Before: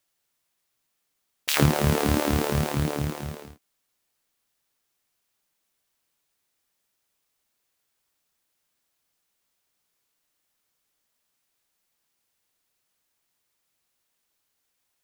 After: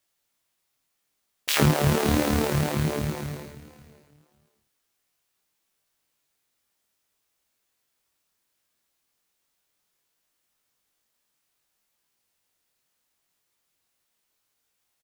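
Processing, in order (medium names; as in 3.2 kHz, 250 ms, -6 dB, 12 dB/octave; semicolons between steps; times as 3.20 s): feedback delay 558 ms, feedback 18%, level -17.5 dB; chorus 0.67 Hz, delay 18.5 ms, depth 4.8 ms; trim +3.5 dB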